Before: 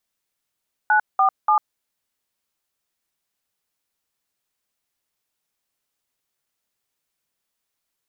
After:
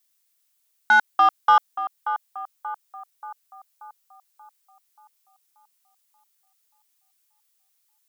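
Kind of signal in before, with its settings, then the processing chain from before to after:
DTMF "947", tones 98 ms, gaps 193 ms, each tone -16 dBFS
tilt EQ +3.5 dB/octave; waveshaping leveller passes 1; band-passed feedback delay 582 ms, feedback 53%, band-pass 820 Hz, level -11 dB

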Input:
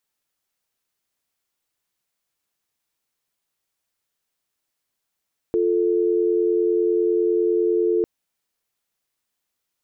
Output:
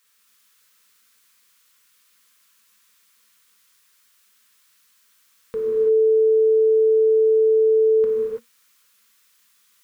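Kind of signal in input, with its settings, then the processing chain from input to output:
call progress tone dial tone, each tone -19.5 dBFS 2.50 s
FFT filter 160 Hz 0 dB, 230 Hz +10 dB, 320 Hz -26 dB, 480 Hz +12 dB, 690 Hz -10 dB, 1.1 kHz +14 dB; peak limiter -22.5 dBFS; gated-style reverb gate 360 ms flat, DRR -4 dB

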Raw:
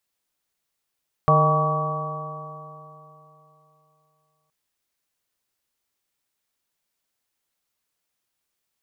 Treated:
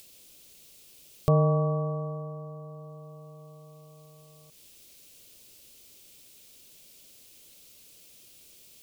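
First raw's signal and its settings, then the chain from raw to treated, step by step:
stretched partials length 3.22 s, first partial 151 Hz, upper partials -19/-7/-2.5/-6/-13/2 dB, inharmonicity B 0.0031, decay 3.22 s, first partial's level -17.5 dB
upward compressor, threshold -32 dBFS; high-order bell 1.2 kHz -13.5 dB

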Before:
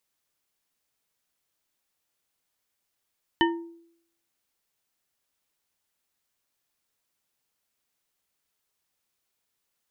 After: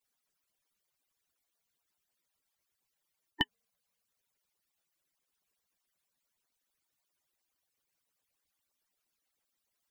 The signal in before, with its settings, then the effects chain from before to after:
glass hit bar, lowest mode 336 Hz, modes 4, decay 0.69 s, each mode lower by 1 dB, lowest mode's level -18.5 dB
harmonic-percussive separation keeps percussive

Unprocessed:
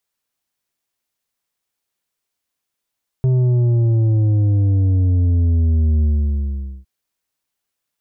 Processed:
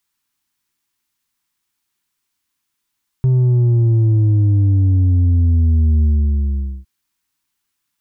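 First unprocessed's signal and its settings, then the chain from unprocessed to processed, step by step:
sub drop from 130 Hz, over 3.61 s, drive 7 dB, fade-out 0.82 s, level -13 dB
high-order bell 560 Hz -11 dB 1 oct; in parallel at -2 dB: peak limiter -22.5 dBFS

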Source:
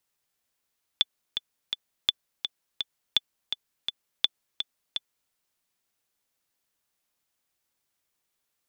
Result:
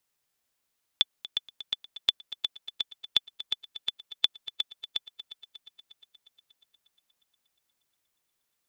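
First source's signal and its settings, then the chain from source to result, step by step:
metronome 167 bpm, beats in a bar 3, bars 4, 3.48 kHz, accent 8 dB -7 dBFS
multi-head delay 119 ms, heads second and third, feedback 62%, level -17 dB

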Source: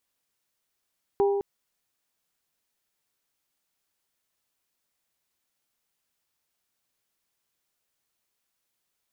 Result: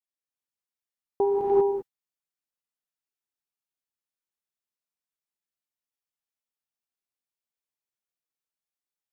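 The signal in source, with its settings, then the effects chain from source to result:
glass hit bell, length 0.21 s, lowest mode 400 Hz, modes 3, decay 1.62 s, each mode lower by 8 dB, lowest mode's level -18 dB
gated-style reverb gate 420 ms rising, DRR -3.5 dB; gate with hold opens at -19 dBFS

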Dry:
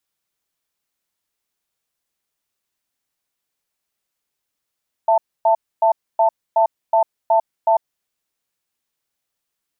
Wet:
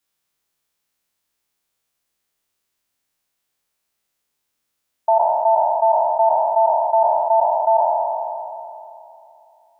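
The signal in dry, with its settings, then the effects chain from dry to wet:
cadence 669 Hz, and 889 Hz, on 0.10 s, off 0.27 s, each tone -14 dBFS 2.71 s
spectral sustain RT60 2.82 s

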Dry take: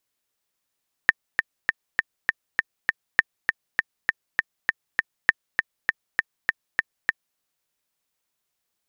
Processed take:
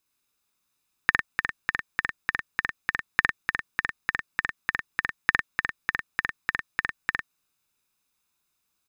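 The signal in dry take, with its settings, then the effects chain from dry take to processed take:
metronome 200 bpm, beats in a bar 7, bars 3, 1.81 kHz, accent 5.5 dB -1 dBFS
comb 0.8 ms, depth 46%; on a send: loudspeakers at several distances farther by 20 m -4 dB, 35 m -7 dB

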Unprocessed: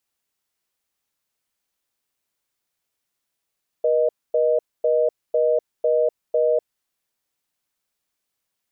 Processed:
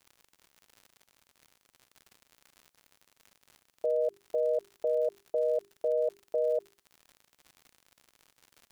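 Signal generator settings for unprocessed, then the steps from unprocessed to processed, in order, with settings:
call progress tone reorder tone, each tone -18.5 dBFS 2.80 s
hum notches 50/100/150/200/250/300/350/400 Hz; peak limiter -21.5 dBFS; crackle 100 per s -42 dBFS

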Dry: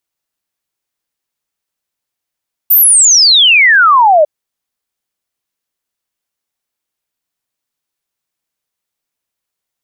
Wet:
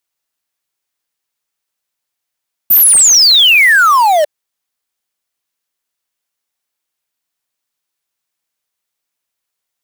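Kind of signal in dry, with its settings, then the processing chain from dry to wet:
log sweep 15 kHz -> 580 Hz 1.55 s -3.5 dBFS
bass shelf 490 Hz -6.5 dB; in parallel at -10.5 dB: integer overflow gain 9.5 dB

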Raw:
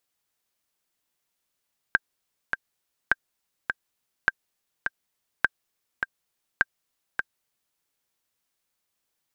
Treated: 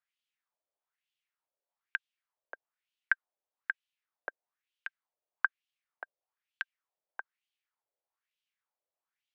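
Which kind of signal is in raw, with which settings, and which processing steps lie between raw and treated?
metronome 103 bpm, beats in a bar 2, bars 5, 1.58 kHz, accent 6.5 dB -5.5 dBFS
wah-wah 1.1 Hz 550–3100 Hz, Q 3.1; steep high-pass 300 Hz 48 dB/octave

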